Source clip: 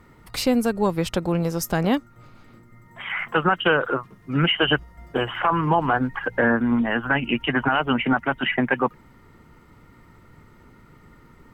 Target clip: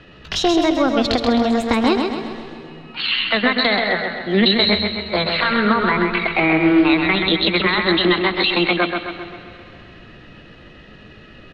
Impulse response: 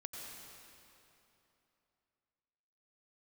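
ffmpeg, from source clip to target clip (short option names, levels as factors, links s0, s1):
-filter_complex "[0:a]asetrate=60591,aresample=44100,atempo=0.727827,lowpass=f=3900:t=q:w=2.7,acrossover=split=320[s0][s1];[s1]acompressor=threshold=0.0631:ratio=3[s2];[s0][s2]amix=inputs=2:normalize=0,aecho=1:1:131|262|393|524|655|786|917:0.562|0.292|0.152|0.0791|0.0411|0.0214|0.0111,asplit=2[s3][s4];[1:a]atrim=start_sample=2205[s5];[s4][s5]afir=irnorm=-1:irlink=0,volume=0.473[s6];[s3][s6]amix=inputs=2:normalize=0,volume=1.58"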